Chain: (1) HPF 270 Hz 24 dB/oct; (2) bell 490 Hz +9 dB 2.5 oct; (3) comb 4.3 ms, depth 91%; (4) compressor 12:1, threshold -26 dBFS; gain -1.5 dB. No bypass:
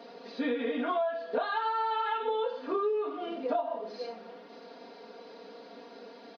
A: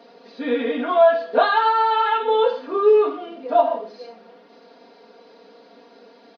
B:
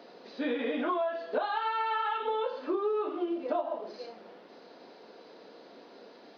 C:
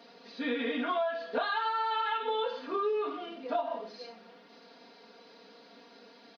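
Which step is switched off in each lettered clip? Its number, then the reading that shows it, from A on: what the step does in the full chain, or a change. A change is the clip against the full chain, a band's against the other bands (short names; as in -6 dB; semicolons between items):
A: 4, mean gain reduction 6.5 dB; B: 3, 250 Hz band +1.5 dB; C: 2, 4 kHz band +5.0 dB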